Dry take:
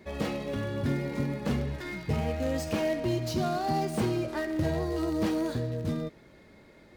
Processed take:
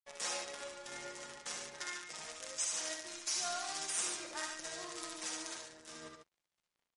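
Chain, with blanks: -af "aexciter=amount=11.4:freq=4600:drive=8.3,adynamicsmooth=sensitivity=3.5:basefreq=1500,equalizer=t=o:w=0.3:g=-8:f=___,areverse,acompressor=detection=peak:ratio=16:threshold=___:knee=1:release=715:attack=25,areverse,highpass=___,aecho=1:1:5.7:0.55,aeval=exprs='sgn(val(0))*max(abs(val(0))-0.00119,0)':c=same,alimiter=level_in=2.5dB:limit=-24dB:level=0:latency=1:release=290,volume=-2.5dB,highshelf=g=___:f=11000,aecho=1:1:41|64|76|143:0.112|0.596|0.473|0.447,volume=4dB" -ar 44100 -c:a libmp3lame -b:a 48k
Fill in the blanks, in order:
4400, -34dB, 1000, -6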